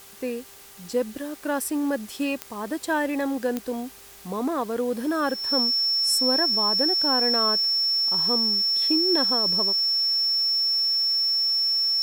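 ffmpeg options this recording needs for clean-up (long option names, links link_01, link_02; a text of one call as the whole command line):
ffmpeg -i in.wav -af "adeclick=threshold=4,bandreject=frequency=397:width_type=h:width=4,bandreject=frequency=794:width_type=h:width=4,bandreject=frequency=1191:width_type=h:width=4,bandreject=frequency=1588:width_type=h:width=4,bandreject=frequency=1985:width_type=h:width=4,bandreject=frequency=5400:width=30,afwtdn=0.0045" out.wav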